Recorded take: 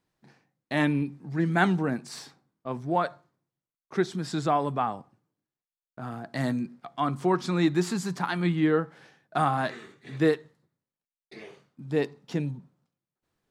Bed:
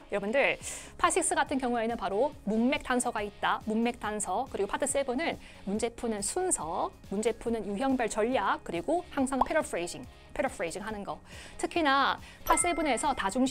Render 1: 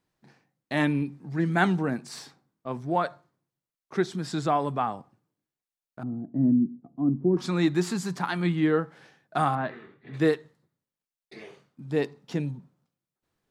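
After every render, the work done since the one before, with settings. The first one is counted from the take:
0:06.03–0:07.37: low-pass with resonance 280 Hz, resonance Q 2.8
0:09.55–0:10.14: high-frequency loss of the air 410 metres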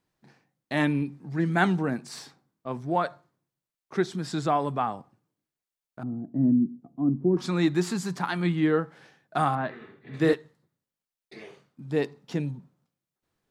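0:09.76–0:10.33: double-tracking delay 49 ms −4 dB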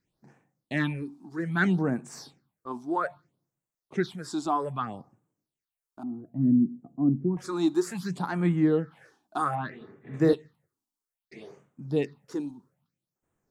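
all-pass phaser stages 6, 0.62 Hz, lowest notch 130–4,500 Hz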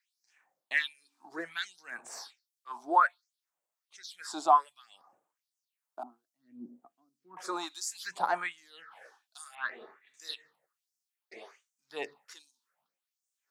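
auto-filter high-pass sine 1.3 Hz 580–5,800 Hz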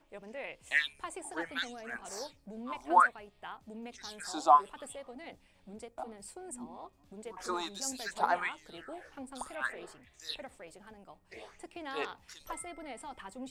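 mix in bed −16.5 dB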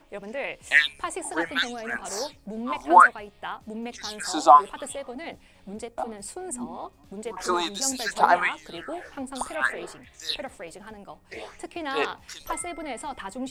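level +10.5 dB
brickwall limiter −3 dBFS, peak gain reduction 3 dB

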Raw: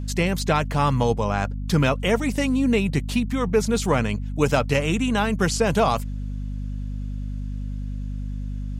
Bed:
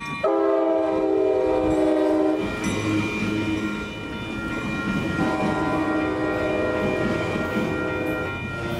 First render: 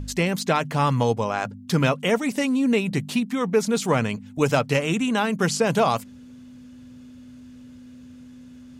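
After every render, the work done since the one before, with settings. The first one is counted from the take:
hum removal 50 Hz, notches 4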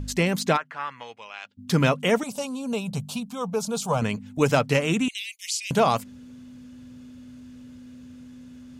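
0:00.56–0:01.57: resonant band-pass 1,300 Hz → 3,500 Hz, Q 2.7
0:02.23–0:04.02: phaser with its sweep stopped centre 790 Hz, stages 4
0:05.08–0:05.71: Butterworth high-pass 2,100 Hz 96 dB per octave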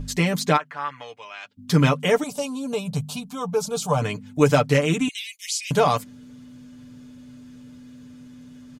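notch filter 2,700 Hz, Q 20
comb filter 6.8 ms, depth 70%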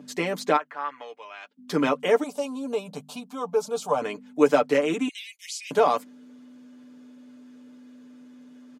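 high-pass filter 260 Hz 24 dB per octave
high-shelf EQ 2,200 Hz −9.5 dB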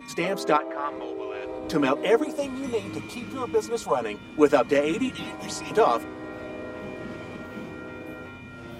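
mix in bed −13.5 dB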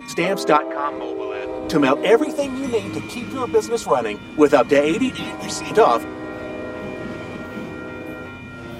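level +6.5 dB
brickwall limiter −2 dBFS, peak gain reduction 3 dB

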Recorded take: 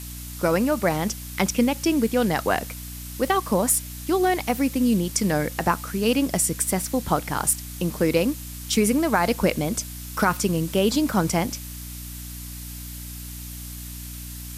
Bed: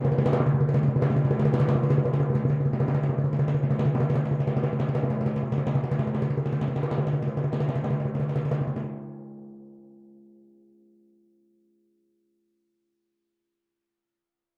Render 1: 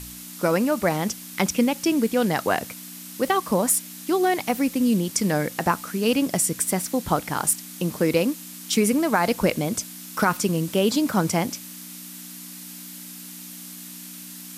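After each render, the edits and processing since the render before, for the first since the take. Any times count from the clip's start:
hum removal 60 Hz, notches 2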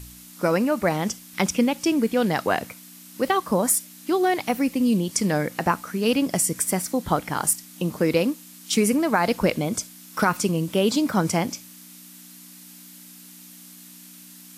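noise reduction from a noise print 6 dB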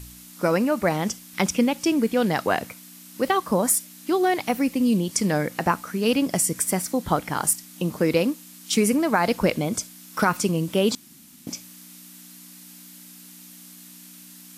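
0:10.95–0:11.47: fill with room tone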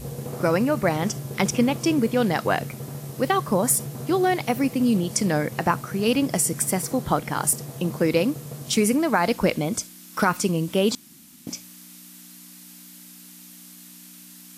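mix in bed −11 dB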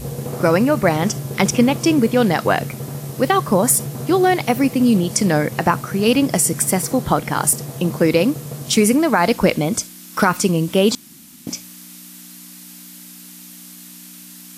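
level +6 dB
brickwall limiter −3 dBFS, peak gain reduction 2.5 dB

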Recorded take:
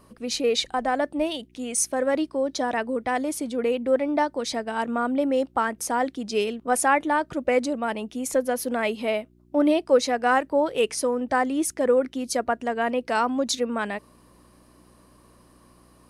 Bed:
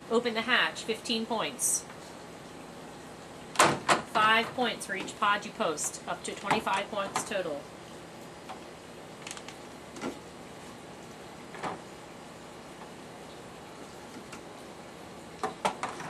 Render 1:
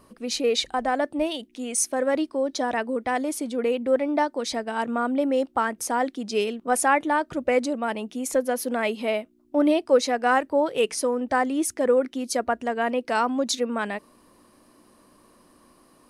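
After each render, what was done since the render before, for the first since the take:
hum removal 60 Hz, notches 3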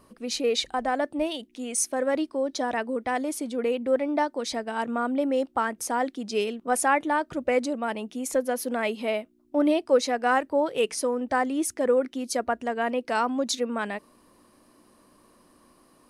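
level −2 dB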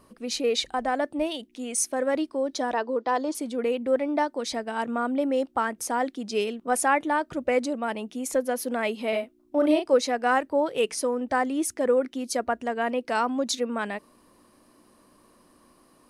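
0:02.73–0:03.35: loudspeaker in its box 270–6,400 Hz, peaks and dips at 330 Hz +4 dB, 480 Hz +4 dB, 1,000 Hz +7 dB, 2,200 Hz −10 dB, 4,500 Hz +7 dB
0:09.09–0:09.94: double-tracking delay 36 ms −5 dB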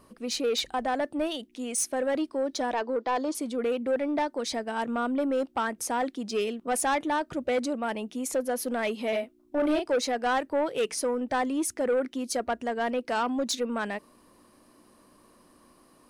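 soft clipping −20.5 dBFS, distortion −13 dB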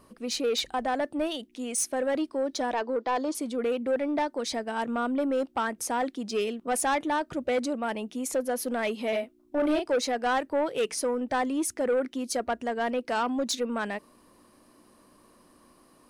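no processing that can be heard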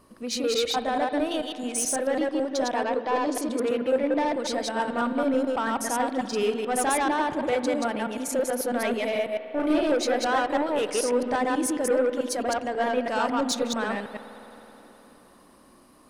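delay that plays each chunk backwards 109 ms, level −0.5 dB
spring reverb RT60 4 s, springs 53 ms, chirp 50 ms, DRR 11.5 dB

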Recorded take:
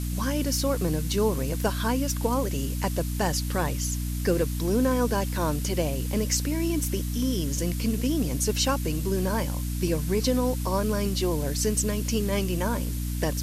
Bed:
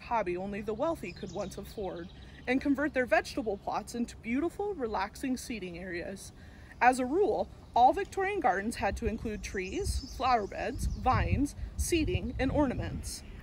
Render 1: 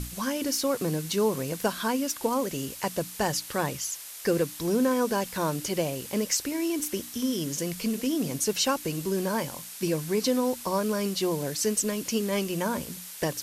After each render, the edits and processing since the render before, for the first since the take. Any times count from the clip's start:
mains-hum notches 60/120/180/240/300 Hz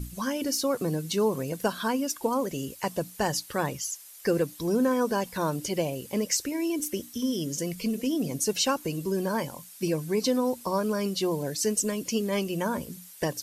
broadband denoise 11 dB, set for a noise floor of −42 dBFS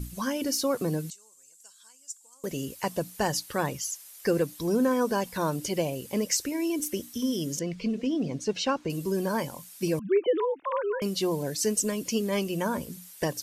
0:01.10–0:02.44: resonant band-pass 7,500 Hz, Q 6.4
0:07.59–0:08.90: high-frequency loss of the air 140 metres
0:09.99–0:11.02: three sine waves on the formant tracks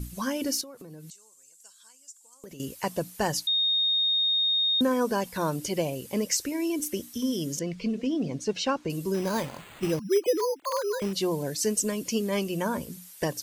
0:00.61–0:02.60: downward compressor 16 to 1, threshold −40 dBFS
0:03.47–0:04.81: beep over 3,700 Hz −21.5 dBFS
0:09.14–0:11.13: bad sample-rate conversion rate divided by 8×, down none, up hold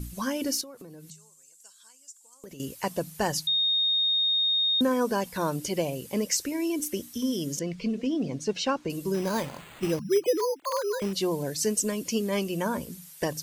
hum removal 52.18 Hz, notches 3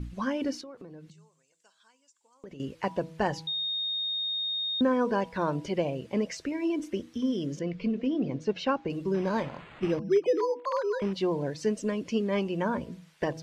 low-pass filter 2,700 Hz 12 dB per octave
hum removal 162.4 Hz, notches 6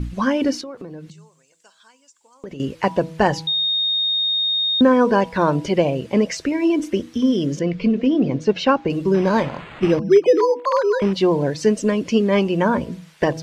level +11 dB

